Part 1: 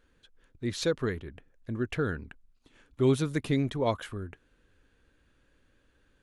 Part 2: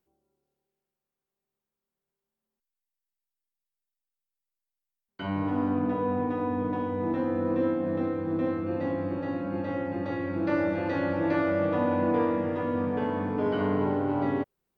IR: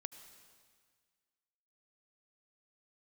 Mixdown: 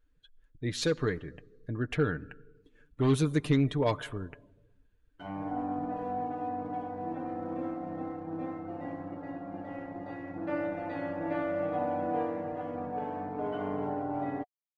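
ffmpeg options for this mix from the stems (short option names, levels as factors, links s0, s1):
-filter_complex "[0:a]asoftclip=type=hard:threshold=0.0944,volume=0.708,asplit=2[s0][s1];[s1]volume=0.631[s2];[1:a]aeval=exprs='sgn(val(0))*max(abs(val(0))-0.00891,0)':c=same,equalizer=f=720:w=5.2:g=14.5,volume=0.355[s3];[2:a]atrim=start_sample=2205[s4];[s2][s4]afir=irnorm=-1:irlink=0[s5];[s0][s3][s5]amix=inputs=3:normalize=0,afftdn=nr=15:nf=-56,aecho=1:1:6.7:0.47"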